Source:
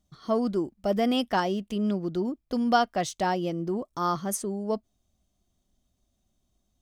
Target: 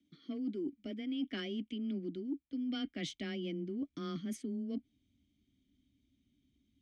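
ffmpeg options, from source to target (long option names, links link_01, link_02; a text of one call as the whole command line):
ffmpeg -i in.wav -filter_complex "[0:a]acrossover=split=790|990[link_01][link_02][link_03];[link_01]volume=18.5dB,asoftclip=hard,volume=-18.5dB[link_04];[link_04][link_02][link_03]amix=inputs=3:normalize=0,asplit=3[link_05][link_06][link_07];[link_05]bandpass=frequency=270:width_type=q:width=8,volume=0dB[link_08];[link_06]bandpass=frequency=2290:width_type=q:width=8,volume=-6dB[link_09];[link_07]bandpass=frequency=3010:width_type=q:width=8,volume=-9dB[link_10];[link_08][link_09][link_10]amix=inputs=3:normalize=0,asubboost=boost=5.5:cutoff=130,areverse,acompressor=threshold=-49dB:ratio=8,areverse,afreqshift=14,volume=13dB" out.wav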